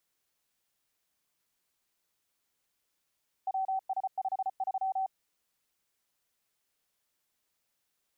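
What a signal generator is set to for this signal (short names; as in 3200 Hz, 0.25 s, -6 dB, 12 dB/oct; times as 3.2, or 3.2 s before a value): Morse "WS53" 34 wpm 765 Hz -28 dBFS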